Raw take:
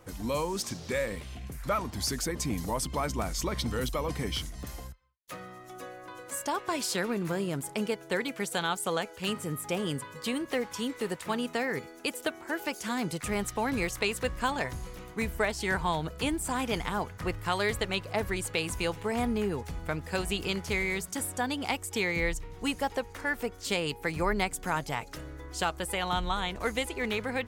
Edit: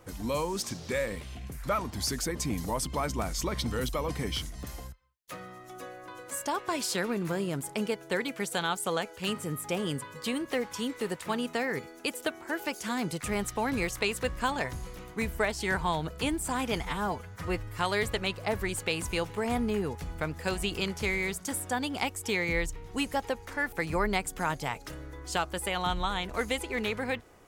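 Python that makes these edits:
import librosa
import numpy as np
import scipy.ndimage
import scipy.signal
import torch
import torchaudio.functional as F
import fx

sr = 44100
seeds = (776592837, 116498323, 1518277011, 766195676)

y = fx.edit(x, sr, fx.stretch_span(start_s=16.81, length_s=0.65, factor=1.5),
    fx.cut(start_s=23.4, length_s=0.59), tone=tone)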